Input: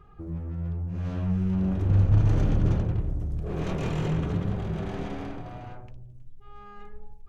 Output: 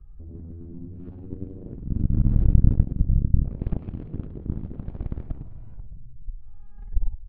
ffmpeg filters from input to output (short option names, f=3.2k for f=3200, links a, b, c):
-filter_complex "[0:a]acrossover=split=120[a][b];[a]acontrast=36[c];[b]aecho=1:1:6.1:0.56[d];[c][d]amix=inputs=2:normalize=0,aresample=11025,aresample=44100,areverse,acompressor=threshold=-26dB:ratio=5,areverse,aemphasis=mode=reproduction:type=riaa,aeval=exprs='0.708*(cos(1*acos(clip(val(0)/0.708,-1,1)))-cos(1*PI/2))+0.282*(cos(3*acos(clip(val(0)/0.708,-1,1)))-cos(3*PI/2))':c=same,lowshelf=f=130:g=7.5,volume=-5.5dB"